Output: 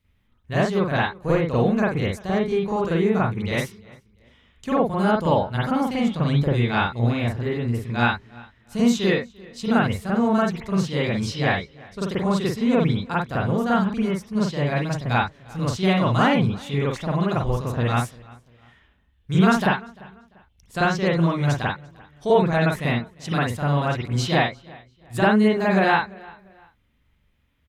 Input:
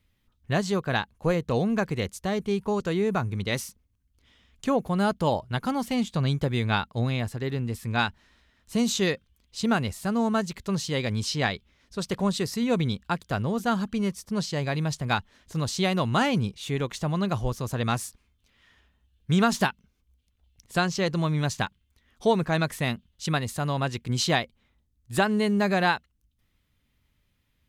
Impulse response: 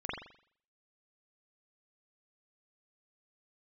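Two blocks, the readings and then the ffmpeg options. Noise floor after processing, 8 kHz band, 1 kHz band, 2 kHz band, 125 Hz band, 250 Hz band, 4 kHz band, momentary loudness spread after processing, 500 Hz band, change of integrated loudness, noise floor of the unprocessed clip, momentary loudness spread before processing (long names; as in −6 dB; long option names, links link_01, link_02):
−63 dBFS, −4.0 dB, +5.0 dB, +4.5 dB, +5.0 dB, +5.0 dB, 0.0 dB, 9 LU, +5.5 dB, +5.0 dB, −71 dBFS, 7 LU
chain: -filter_complex "[0:a]asplit=2[link_01][link_02];[link_02]adelay=345,lowpass=frequency=4800:poles=1,volume=-23dB,asplit=2[link_03][link_04];[link_04]adelay=345,lowpass=frequency=4800:poles=1,volume=0.33[link_05];[link_01][link_03][link_05]amix=inputs=3:normalize=0[link_06];[1:a]atrim=start_sample=2205,atrim=end_sample=4410[link_07];[link_06][link_07]afir=irnorm=-1:irlink=0,volume=1dB"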